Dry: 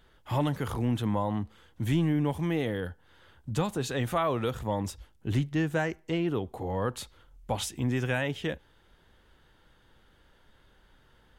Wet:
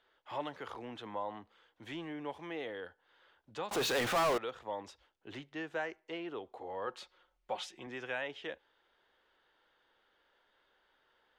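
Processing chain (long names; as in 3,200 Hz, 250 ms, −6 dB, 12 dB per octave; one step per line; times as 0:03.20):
three-way crossover with the lows and the highs turned down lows −23 dB, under 360 Hz, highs −22 dB, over 5,500 Hz
0:03.71–0:04.38: power curve on the samples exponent 0.35
0:06.86–0:07.87: comb filter 5.5 ms, depth 60%
level −6.5 dB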